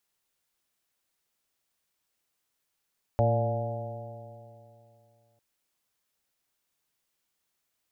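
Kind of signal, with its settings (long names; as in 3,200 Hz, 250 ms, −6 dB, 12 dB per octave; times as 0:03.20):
stiff-string partials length 2.20 s, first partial 112 Hz, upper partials −10.5/−15/−11/−1/−6/−11 dB, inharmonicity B 0.003, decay 2.76 s, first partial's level −22.5 dB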